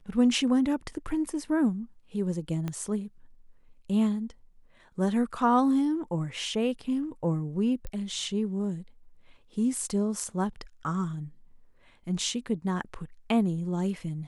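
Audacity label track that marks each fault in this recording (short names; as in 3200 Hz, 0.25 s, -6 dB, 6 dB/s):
2.680000	2.680000	pop -20 dBFS
7.870000	7.870000	pop -24 dBFS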